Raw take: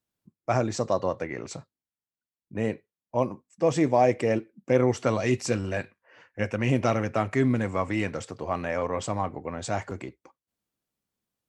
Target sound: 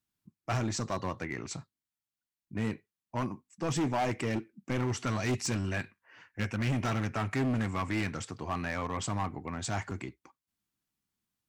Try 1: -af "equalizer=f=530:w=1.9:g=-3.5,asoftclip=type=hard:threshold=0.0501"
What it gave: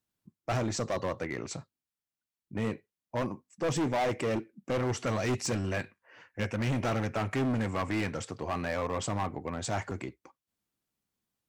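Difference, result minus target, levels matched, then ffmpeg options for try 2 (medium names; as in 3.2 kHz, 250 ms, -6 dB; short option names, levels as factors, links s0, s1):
500 Hz band +4.0 dB
-af "equalizer=f=530:w=1.9:g=-12.5,asoftclip=type=hard:threshold=0.0501"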